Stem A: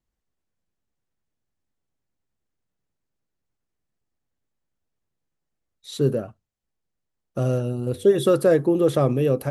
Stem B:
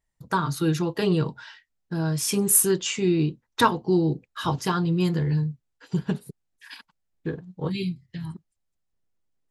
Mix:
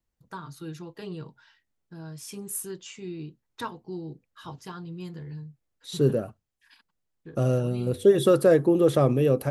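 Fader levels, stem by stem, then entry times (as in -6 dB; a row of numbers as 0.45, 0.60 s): -1.0, -15.0 dB; 0.00, 0.00 s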